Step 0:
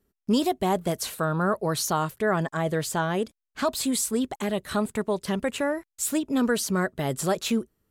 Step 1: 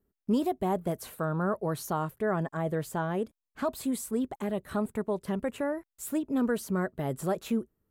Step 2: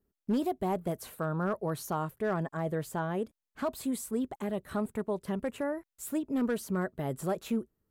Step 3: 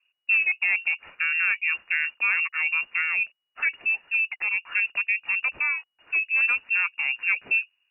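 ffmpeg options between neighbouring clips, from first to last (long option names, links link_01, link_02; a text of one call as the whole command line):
ffmpeg -i in.wav -af "equalizer=frequency=5000:width_type=o:width=2.5:gain=-12.5,volume=-3.5dB" out.wav
ffmpeg -i in.wav -af "asoftclip=type=hard:threshold=-21dB,volume=-2dB" out.wav
ffmpeg -i in.wav -af "lowpass=frequency=2500:width_type=q:width=0.5098,lowpass=frequency=2500:width_type=q:width=0.6013,lowpass=frequency=2500:width_type=q:width=0.9,lowpass=frequency=2500:width_type=q:width=2.563,afreqshift=-2900,volume=7dB" out.wav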